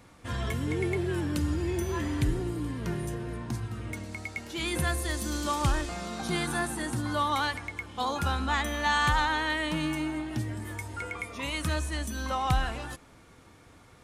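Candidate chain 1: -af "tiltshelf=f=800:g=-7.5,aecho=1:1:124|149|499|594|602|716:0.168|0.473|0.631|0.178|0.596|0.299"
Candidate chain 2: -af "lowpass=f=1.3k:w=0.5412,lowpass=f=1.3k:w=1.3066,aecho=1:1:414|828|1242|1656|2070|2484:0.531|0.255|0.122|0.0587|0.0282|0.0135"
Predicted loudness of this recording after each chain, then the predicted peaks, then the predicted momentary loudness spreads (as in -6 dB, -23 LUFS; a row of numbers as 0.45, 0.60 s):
-25.5, -31.5 LUFS; -7.5, -13.0 dBFS; 14, 9 LU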